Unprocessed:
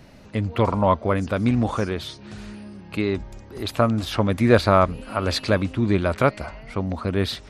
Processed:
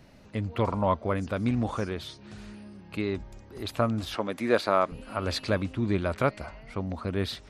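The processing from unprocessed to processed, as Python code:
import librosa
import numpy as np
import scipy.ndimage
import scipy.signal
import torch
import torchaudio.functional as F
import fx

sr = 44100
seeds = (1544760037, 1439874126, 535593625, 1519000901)

y = fx.highpass(x, sr, hz=280.0, slope=12, at=(4.15, 4.92))
y = F.gain(torch.from_numpy(y), -6.5).numpy()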